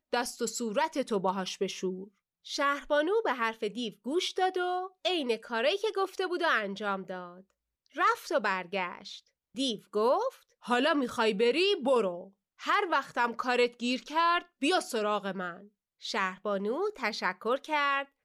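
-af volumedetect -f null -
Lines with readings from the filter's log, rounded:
mean_volume: -30.9 dB
max_volume: -15.8 dB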